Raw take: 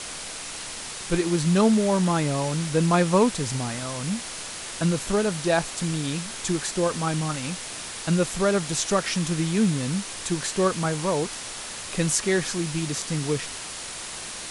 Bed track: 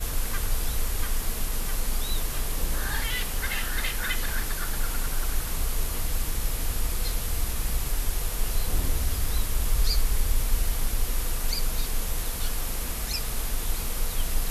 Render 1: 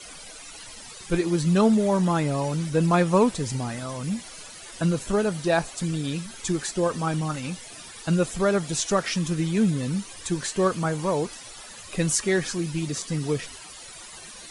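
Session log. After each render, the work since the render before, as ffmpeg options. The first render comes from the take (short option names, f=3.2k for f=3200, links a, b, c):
-af "afftdn=nr=14:nf=-36"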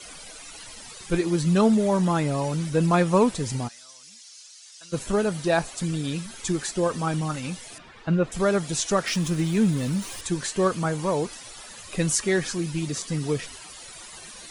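-filter_complex "[0:a]asplit=3[a][b][c];[a]afade=t=out:st=3.67:d=0.02[d];[b]bandpass=f=5.6k:t=q:w=1.9,afade=t=in:st=3.67:d=0.02,afade=t=out:st=4.92:d=0.02[e];[c]afade=t=in:st=4.92:d=0.02[f];[d][e][f]amix=inputs=3:normalize=0,asettb=1/sr,asplit=3[g][h][i];[g]atrim=end=7.784[j];[h]atrim=start=7.78:end=8.32,asetpts=PTS-STARTPTS,afade=t=in:d=0.004:c=qsin,afade=t=out:st=0.536:d=0.004:c=qsin,lowpass=2.3k[k];[i]atrim=start=8.316[l];[j][k]acrossfade=d=0.004:c1=hsin:c2=qsin[m];[m][l]acrossfade=d=0.004:c1=qsin:c2=hsin,asettb=1/sr,asplit=3[n][o][p];[n]atrim=end=9.074[q];[o]atrim=start=9.07:end=10.21,asetpts=PTS-STARTPTS,afade=t=in:d=0.004:c=qsin,afade=t=out:st=1.136:d=0.004:c=qsin,aeval=exprs='val(0)+0.5*0.015*sgn(val(0))':c=same[r];[p]atrim=start=10.206[s];[q][r]acrossfade=d=0.004:c1=hsin:c2=qsin[t];[t][s]acrossfade=d=0.004:c1=qsin:c2=hsin"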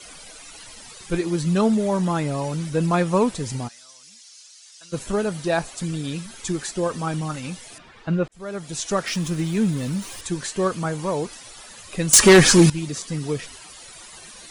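-filter_complex "[0:a]asettb=1/sr,asplit=3[a][b][c];[a]atrim=end=12.134[d];[b]atrim=start=12.13:end=12.7,asetpts=PTS-STARTPTS,afade=t=in:d=0.004:c=qsin,afade=t=out:st=0.566:d=0.004:c=qsin,aeval=exprs='0.501*sin(PI/2*4.47*val(0)/0.501)':c=same[e];[c]atrim=start=12.696[f];[d][e]acrossfade=d=0.004:c1=hsin:c2=qsin[g];[g][f]acrossfade=d=0.004:c1=qsin:c2=hsin,asplit=2[h][i];[h]atrim=end=8.28,asetpts=PTS-STARTPTS,afade=t=out:st=8.276:d=0.004:c=hsin[j];[i]atrim=start=8.28,asetpts=PTS-STARTPTS,afade=t=in:d=0.68[k];[j][k]concat=n=2:v=0:a=1"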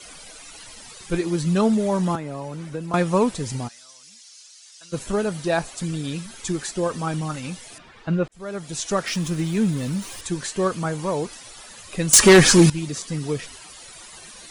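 -filter_complex "[0:a]asettb=1/sr,asplit=3[a][b][c];[a]atrim=end=2.154[d];[b]atrim=start=2.15:end=2.94,asetpts=PTS-STARTPTS,afade=t=in:d=0.004:c=qsin,afade=t=out:st=0.786:d=0.004:c=qsin,acrossover=split=250|2400[e][f][g];[e]acompressor=threshold=-37dB:ratio=4[h];[f]acompressor=threshold=-31dB:ratio=4[i];[g]acompressor=threshold=-53dB:ratio=4[j];[h][i][j]amix=inputs=3:normalize=0[k];[c]atrim=start=2.936[l];[d][k]acrossfade=d=0.004:c1=hsin:c2=qsin[m];[m][l]acrossfade=d=0.004:c1=qsin:c2=hsin"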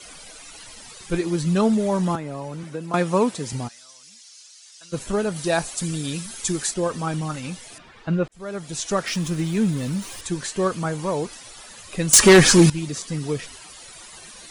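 -filter_complex "[0:a]asettb=1/sr,asplit=3[a][b][c];[a]atrim=end=2.634[d];[b]atrim=start=2.63:end=3.53,asetpts=PTS-STARTPTS,afade=t=in:d=0.004:c=qsin,afade=t=out:st=0.896:d=0.004:c=qsin,highpass=150[e];[c]atrim=start=3.526[f];[d][e]acrossfade=d=0.004:c1=hsin:c2=qsin[g];[g][f]acrossfade=d=0.004:c1=qsin:c2=hsin,asettb=1/sr,asplit=3[h][i][j];[h]atrim=end=5.364[k];[i]atrim=start=5.36:end=6.74,asetpts=PTS-STARTPTS,afade=t=in:d=0.004:c=qsin,afade=t=out:st=1.376:d=0.004:c=qsin,highshelf=f=5.3k:g=10[l];[j]atrim=start=6.736[m];[k][l]acrossfade=d=0.004:c1=hsin:c2=qsin[n];[n][m]acrossfade=d=0.004:c1=qsin:c2=hsin"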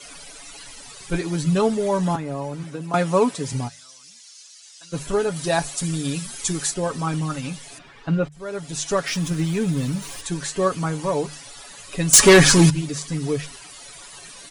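-af "bandreject=f=50:t=h:w=6,bandreject=f=100:t=h:w=6,bandreject=f=150:t=h:w=6,aecho=1:1:7.1:0.55"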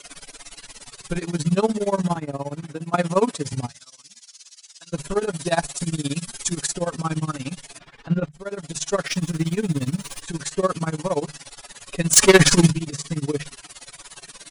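-filter_complex "[0:a]tremolo=f=17:d=0.92,asplit=2[a][b];[b]asoftclip=type=tanh:threshold=-11dB,volume=-8dB[c];[a][c]amix=inputs=2:normalize=0"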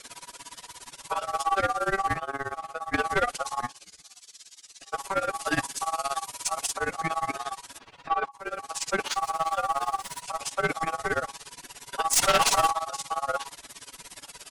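-af "aeval=exprs='val(0)*sin(2*PI*970*n/s)':c=same,aeval=exprs='(tanh(6.31*val(0)+0.15)-tanh(0.15))/6.31':c=same"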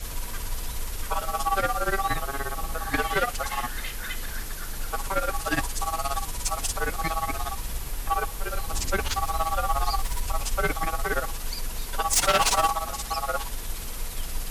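-filter_complex "[1:a]volume=-5dB[a];[0:a][a]amix=inputs=2:normalize=0"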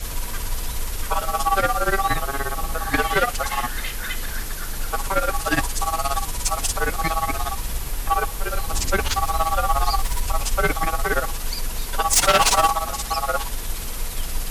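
-af "volume=5dB"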